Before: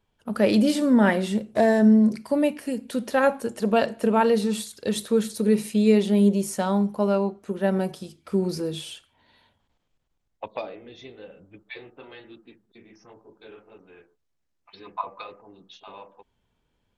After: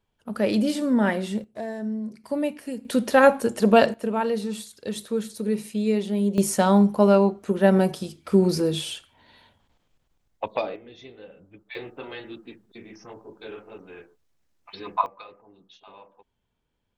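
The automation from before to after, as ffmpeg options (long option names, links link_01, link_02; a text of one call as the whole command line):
ffmpeg -i in.wav -af "asetnsamples=nb_out_samples=441:pad=0,asendcmd='1.44 volume volume -13.5dB;2.24 volume volume -4dB;2.85 volume volume 5dB;3.94 volume volume -5dB;6.38 volume volume 5.5dB;10.76 volume volume -1.5dB;11.75 volume volume 7dB;15.06 volume volume -5dB',volume=-3dB" out.wav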